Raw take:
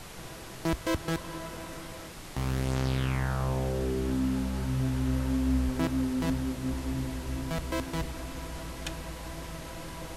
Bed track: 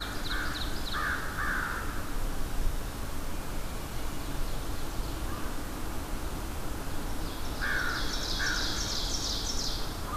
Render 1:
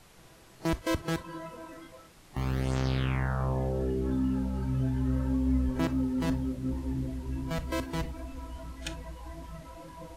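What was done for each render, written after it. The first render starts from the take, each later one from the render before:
noise reduction from a noise print 12 dB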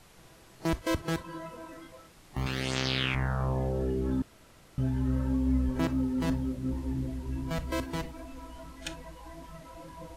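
0:02.46–0:03.15: meter weighting curve D
0:04.22–0:04.78: fill with room tone
0:07.96–0:09.74: parametric band 79 Hz −9.5 dB 1.5 octaves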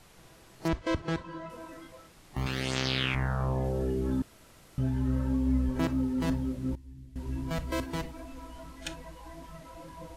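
0:00.68–0:01.50: high-frequency loss of the air 98 metres
0:03.64–0:04.79: high-shelf EQ 6,100 Hz +4.5 dB
0:06.75–0:07.16: guitar amp tone stack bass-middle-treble 6-0-2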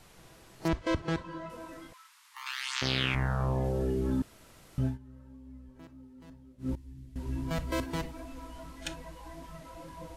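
0:01.93–0:02.82: Butterworth high-pass 900 Hz 96 dB per octave
0:04.86–0:06.70: duck −22.5 dB, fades 0.12 s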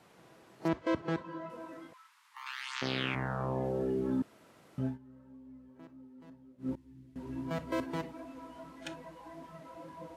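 high-pass filter 180 Hz 12 dB per octave
high-shelf EQ 2,800 Hz −11.5 dB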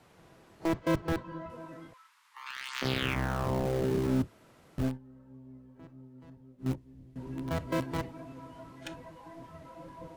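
sub-octave generator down 1 octave, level −1 dB
in parallel at −10.5 dB: bit reduction 5 bits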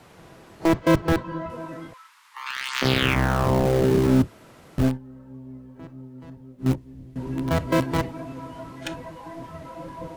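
level +10 dB

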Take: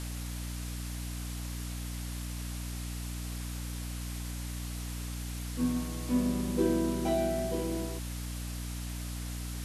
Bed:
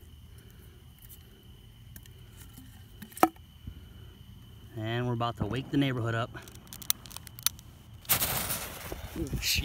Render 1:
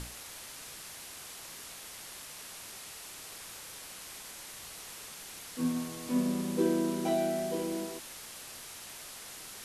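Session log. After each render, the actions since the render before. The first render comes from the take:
mains-hum notches 60/120/180/240/300/360 Hz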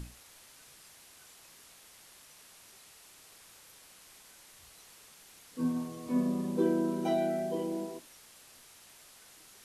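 noise reduction from a noise print 10 dB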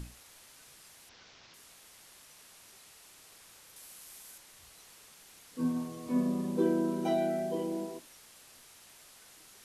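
0:01.09–0:01.54: variable-slope delta modulation 32 kbit/s
0:03.76–0:04.38: high-shelf EQ 7,800 Hz +11 dB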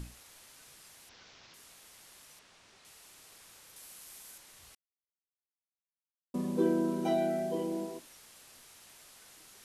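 0:02.39–0:02.85: high-frequency loss of the air 93 metres
0:04.75–0:06.34: silence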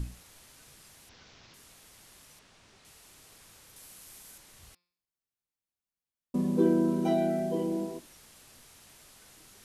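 low-shelf EQ 280 Hz +9.5 dB
hum removal 176 Hz, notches 31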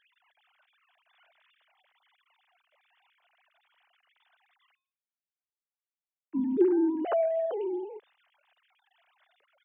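three sine waves on the formant tracks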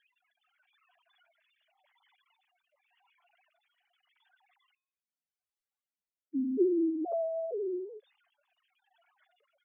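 expanding power law on the bin magnitudes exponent 3
rotating-speaker cabinet horn 0.85 Hz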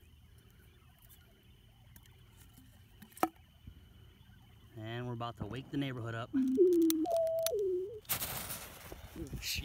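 mix in bed −9.5 dB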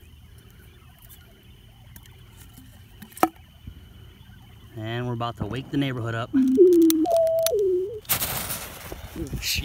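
level +12 dB
brickwall limiter −1 dBFS, peak gain reduction 1.5 dB

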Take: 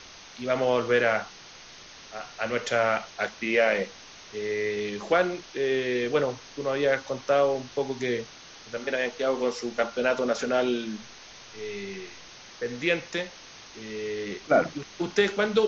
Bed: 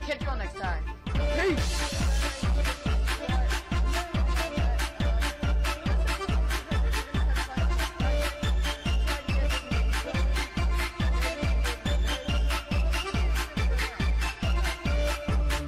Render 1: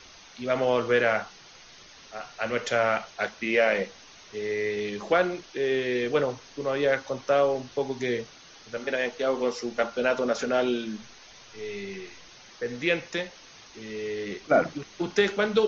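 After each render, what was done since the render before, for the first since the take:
broadband denoise 6 dB, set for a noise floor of −48 dBFS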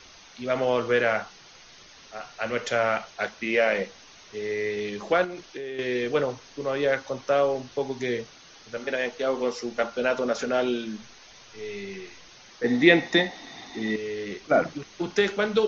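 0:05.24–0:05.79: downward compressor 10 to 1, threshold −31 dBFS
0:12.64–0:13.96: hollow resonant body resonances 270/730/1,900/3,600 Hz, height 16 dB, ringing for 20 ms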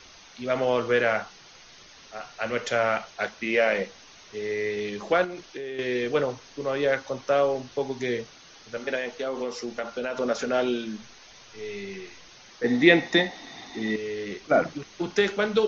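0:08.98–0:10.20: downward compressor 4 to 1, threshold −26 dBFS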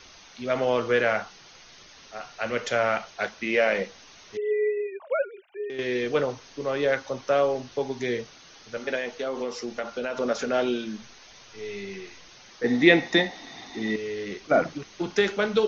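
0:04.37–0:05.70: three sine waves on the formant tracks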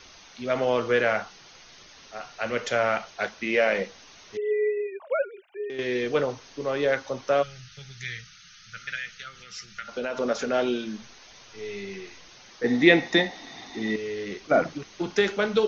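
0:07.42–0:09.89: gain on a spectral selection 200–1,200 Hz −28 dB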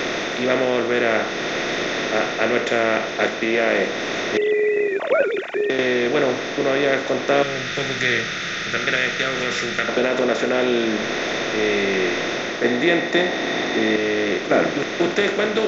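compressor on every frequency bin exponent 0.4
speech leveller within 4 dB 0.5 s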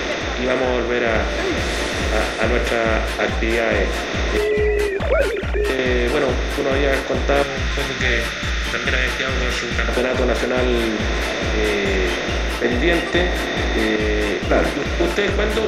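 mix in bed +2 dB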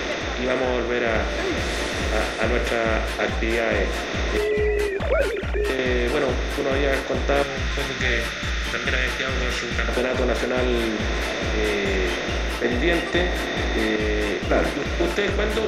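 level −3.5 dB

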